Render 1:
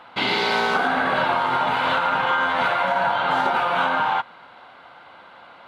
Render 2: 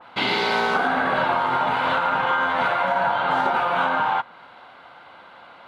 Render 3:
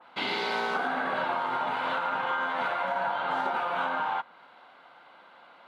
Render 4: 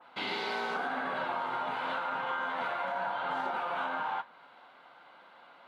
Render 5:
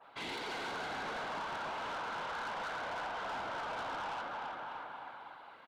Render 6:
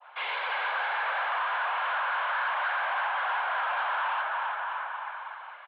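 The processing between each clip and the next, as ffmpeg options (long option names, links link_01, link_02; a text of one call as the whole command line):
ffmpeg -i in.wav -af "adynamicequalizer=threshold=0.0224:dfrequency=2100:dqfactor=0.7:tfrequency=2100:tqfactor=0.7:attack=5:release=100:ratio=0.375:range=2:mode=cutabove:tftype=highshelf" out.wav
ffmpeg -i in.wav -af "highpass=180,volume=-8dB" out.wav
ffmpeg -i in.wav -filter_complex "[0:a]asplit=2[link_01][link_02];[link_02]alimiter=level_in=3dB:limit=-24dB:level=0:latency=1,volume=-3dB,volume=-1dB[link_03];[link_01][link_03]amix=inputs=2:normalize=0,flanger=delay=7:depth=7.5:regen=-65:speed=0.9:shape=sinusoidal,volume=-3.5dB" out.wav
ffmpeg -i in.wav -af "afftfilt=real='hypot(re,im)*cos(2*PI*random(0))':imag='hypot(re,im)*sin(2*PI*random(1))':win_size=512:overlap=0.75,aecho=1:1:330|627|894.3|1135|1351:0.631|0.398|0.251|0.158|0.1,asoftclip=type=tanh:threshold=-40dB,volume=3.5dB" out.wav
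ffmpeg -i in.wav -af "highpass=frequency=520:width_type=q:width=0.5412,highpass=frequency=520:width_type=q:width=1.307,lowpass=frequency=3200:width_type=q:width=0.5176,lowpass=frequency=3200:width_type=q:width=0.7071,lowpass=frequency=3200:width_type=q:width=1.932,afreqshift=82,adynamicequalizer=threshold=0.00251:dfrequency=1600:dqfactor=0.81:tfrequency=1600:tqfactor=0.81:attack=5:release=100:ratio=0.375:range=2:mode=boostabove:tftype=bell,volume=8dB" out.wav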